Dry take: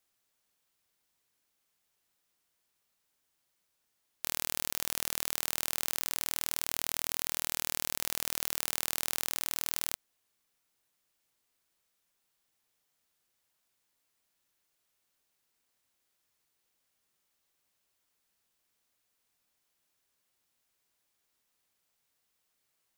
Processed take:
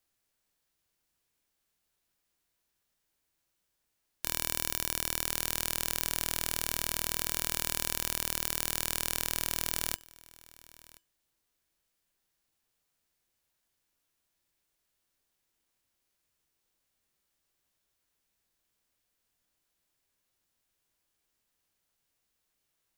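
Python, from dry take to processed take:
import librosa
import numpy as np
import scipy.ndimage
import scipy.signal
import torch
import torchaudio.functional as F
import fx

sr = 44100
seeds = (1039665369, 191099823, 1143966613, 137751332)

p1 = fx.low_shelf(x, sr, hz=88.0, db=11.0)
p2 = fx.comb_fb(p1, sr, f0_hz=330.0, decay_s=0.28, harmonics='odd', damping=0.0, mix_pct=50)
p3 = np.clip(p2, -10.0 ** (-19.0 / 20.0), 10.0 ** (-19.0 / 20.0))
p4 = p2 + (p3 * 10.0 ** (-7.0 / 20.0))
p5 = fx.formant_shift(p4, sr, semitones=5)
p6 = p5 + fx.echo_single(p5, sr, ms=1028, db=-17.5, dry=0)
p7 = fx.upward_expand(p6, sr, threshold_db=-50.0, expansion=1.5)
y = p7 * 10.0 ** (7.0 / 20.0)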